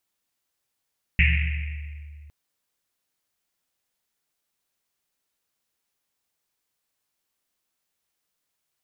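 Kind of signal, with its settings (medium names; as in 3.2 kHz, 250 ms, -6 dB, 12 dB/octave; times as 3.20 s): Risset drum length 1.11 s, pitch 74 Hz, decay 2.62 s, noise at 2.3 kHz, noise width 820 Hz, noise 35%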